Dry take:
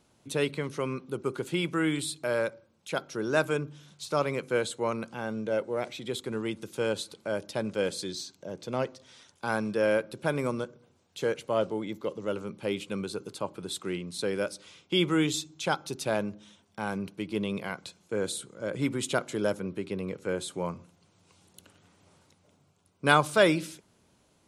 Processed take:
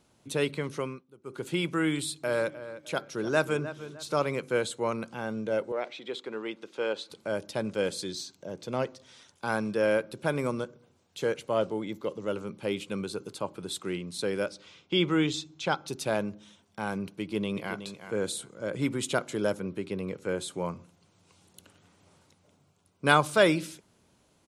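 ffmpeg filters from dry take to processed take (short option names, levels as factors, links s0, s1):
-filter_complex "[0:a]asplit=3[s0][s1][s2];[s0]afade=t=out:st=2.26:d=0.02[s3];[s1]asplit=2[s4][s5];[s5]adelay=305,lowpass=f=3100:p=1,volume=0.224,asplit=2[s6][s7];[s7]adelay=305,lowpass=f=3100:p=1,volume=0.33,asplit=2[s8][s9];[s9]adelay=305,lowpass=f=3100:p=1,volume=0.33[s10];[s4][s6][s8][s10]amix=inputs=4:normalize=0,afade=t=in:st=2.26:d=0.02,afade=t=out:st=4.24:d=0.02[s11];[s2]afade=t=in:st=4.24:d=0.02[s12];[s3][s11][s12]amix=inputs=3:normalize=0,asettb=1/sr,asplit=3[s13][s14][s15];[s13]atrim=end=5.724[s16];[s14]atrim=start=5.72:end=7.1,asetpts=PTS-STARTPTS,afade=t=in:d=0.004:c=qsin,afade=t=out:st=1.376:d=0.004:c=qsin,highpass=360,lowpass=4000[s17];[s15]atrim=start=7.096[s18];[s16][s17]acrossfade=d=0.004:c1=hsin:c2=qsin[s19];[s19][s18]acrossfade=d=0.004:c1=qsin:c2=hsin,asettb=1/sr,asplit=3[s20][s21][s22];[s20]atrim=end=14.464[s23];[s21]atrim=start=14.46:end=15.88,asetpts=PTS-STARTPTS,afade=t=in:d=0.004:c=qsin,afade=t=out:st=1.416:d=0.004:c=qsin,lowpass=5500[s24];[s22]atrim=start=15.876[s25];[s23][s24]acrossfade=d=0.004:c1=hsin:c2=qsin[s26];[s26][s25]acrossfade=d=0.004:c1=qsin:c2=hsin,asplit=2[s27][s28];[s28]afade=t=in:st=17.13:d=0.01,afade=t=out:st=17.8:d=0.01,aecho=0:1:370|740:0.298538|0.0447807[s29];[s27][s29]amix=inputs=2:normalize=0,asplit=3[s30][s31][s32];[s30]atrim=end=1.04,asetpts=PTS-STARTPTS,afade=t=out:st=0.78:d=0.26:silence=0.0891251[s33];[s31]atrim=start=1.04:end=1.22,asetpts=PTS-STARTPTS,volume=0.0891[s34];[s32]atrim=start=1.22,asetpts=PTS-STARTPTS,afade=t=in:d=0.26:silence=0.0891251[s35];[s33][s34][s35]concat=n=3:v=0:a=1"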